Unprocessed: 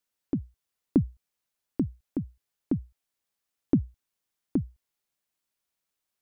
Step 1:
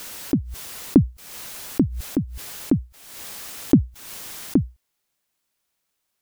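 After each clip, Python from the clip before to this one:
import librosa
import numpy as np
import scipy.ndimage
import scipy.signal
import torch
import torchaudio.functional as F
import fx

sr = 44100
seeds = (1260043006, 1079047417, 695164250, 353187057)

y = fx.pre_swell(x, sr, db_per_s=51.0)
y = y * librosa.db_to_amplitude(8.0)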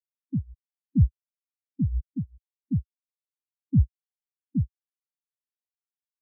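y = fx.leveller(x, sr, passes=5)
y = fx.spectral_expand(y, sr, expansion=4.0)
y = y * librosa.db_to_amplitude(-8.5)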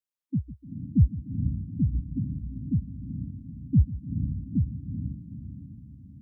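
y = fx.echo_diffused(x, sr, ms=452, feedback_pct=52, wet_db=-7.0)
y = fx.echo_warbled(y, sr, ms=149, feedback_pct=64, rate_hz=2.8, cents=145, wet_db=-16)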